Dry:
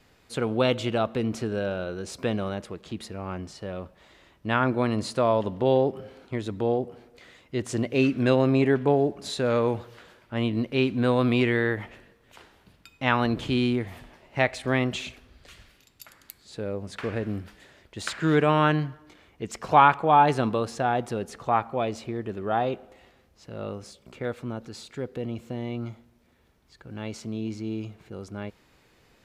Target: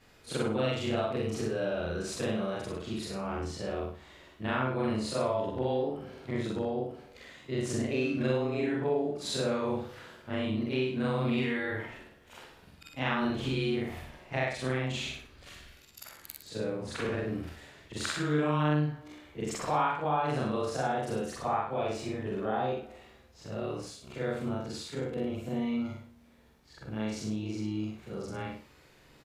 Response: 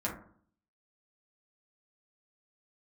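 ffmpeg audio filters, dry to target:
-af "afftfilt=real='re':imag='-im':win_size=4096:overlap=0.75,acompressor=threshold=0.0178:ratio=3,aecho=1:1:60|120|180|240:0.596|0.173|0.0501|0.0145,volume=1.68"

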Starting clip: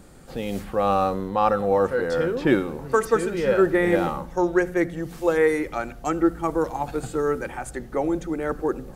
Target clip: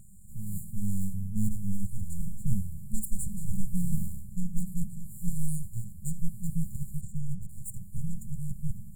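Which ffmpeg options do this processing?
-filter_complex "[0:a]asplit=3[s0][s1][s2];[s0]afade=t=out:st=7:d=0.02[s3];[s1]adynamicsmooth=sensitivity=6.5:basefreq=3500,afade=t=in:st=7:d=0.02,afade=t=out:st=7.48:d=0.02[s4];[s2]afade=t=in:st=7.48:d=0.02[s5];[s3][s4][s5]amix=inputs=3:normalize=0,aeval=exprs='abs(val(0))':c=same,afftfilt=real='re*(1-between(b*sr/4096,220,6900))':imag='im*(1-between(b*sr/4096,220,6900))':win_size=4096:overlap=0.75,adynamicequalizer=threshold=0.00141:dfrequency=6000:dqfactor=0.7:tfrequency=6000:tqfactor=0.7:attack=5:release=100:ratio=0.375:range=2.5:mode=boostabove:tftype=highshelf"

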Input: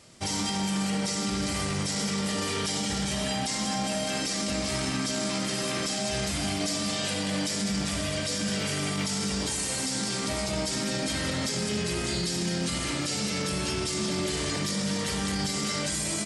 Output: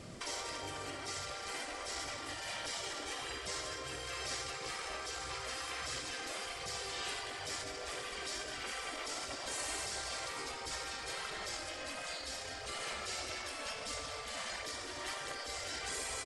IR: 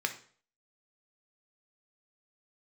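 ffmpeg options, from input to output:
-filter_complex "[0:a]highshelf=f=2300:g=-11.5,bandreject=f=900:w=11,asplit=2[s0][s1];[s1]adelay=641.4,volume=0.2,highshelf=f=4000:g=-14.4[s2];[s0][s2]amix=inputs=2:normalize=0,acompressor=threshold=0.0112:ratio=6,afftfilt=real='re*lt(hypot(re,im),0.0178)':imag='im*lt(hypot(re,im),0.0178)':win_size=1024:overlap=0.75,aphaser=in_gain=1:out_gain=1:delay=3.7:decay=0.25:speed=1.5:type=triangular,volume=2.37"

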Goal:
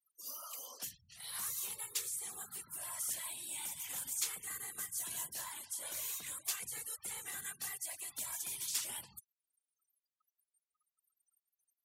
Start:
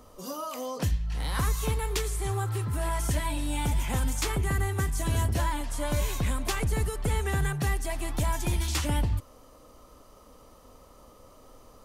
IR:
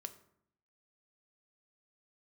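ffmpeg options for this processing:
-af "afftfilt=real='hypot(re,im)*cos(2*PI*random(0))':imag='hypot(re,im)*sin(2*PI*random(1))':win_size=512:overlap=0.75,aderivative,afftfilt=real='re*gte(hypot(re,im),0.001)':imag='im*gte(hypot(re,im),0.001)':win_size=1024:overlap=0.75,volume=1.58"

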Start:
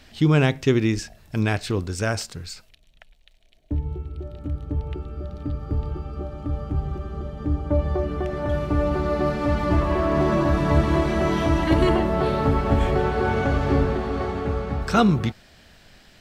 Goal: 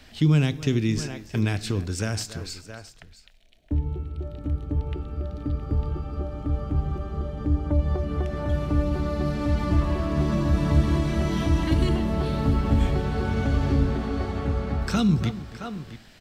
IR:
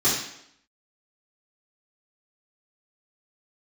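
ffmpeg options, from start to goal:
-filter_complex "[0:a]aecho=1:1:281|667:0.112|0.15,acrossover=split=260|3000[s0][s1][s2];[s1]acompressor=threshold=0.0282:ratio=5[s3];[s0][s3][s2]amix=inputs=3:normalize=0,asplit=2[s4][s5];[1:a]atrim=start_sample=2205[s6];[s5][s6]afir=irnorm=-1:irlink=0,volume=0.0237[s7];[s4][s7]amix=inputs=2:normalize=0"

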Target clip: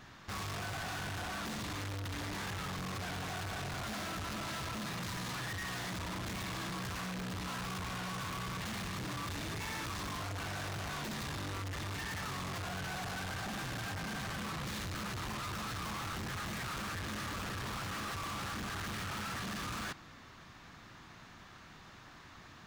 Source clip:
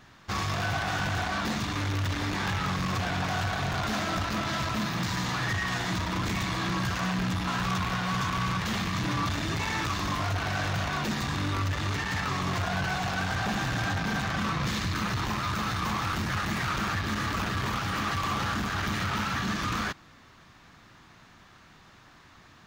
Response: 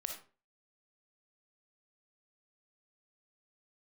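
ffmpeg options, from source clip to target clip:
-af "asoftclip=type=hard:threshold=0.0112"

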